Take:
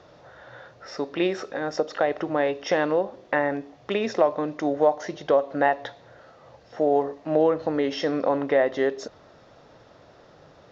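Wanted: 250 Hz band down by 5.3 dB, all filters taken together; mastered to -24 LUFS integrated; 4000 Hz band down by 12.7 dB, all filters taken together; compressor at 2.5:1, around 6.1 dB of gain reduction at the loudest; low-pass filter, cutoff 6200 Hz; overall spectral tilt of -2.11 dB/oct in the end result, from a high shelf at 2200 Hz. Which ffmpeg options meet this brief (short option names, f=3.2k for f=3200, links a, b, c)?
-af "lowpass=6.2k,equalizer=f=250:t=o:g=-7,highshelf=f=2.2k:g=-8.5,equalizer=f=4k:t=o:g=-8.5,acompressor=threshold=-26dB:ratio=2.5,volume=7.5dB"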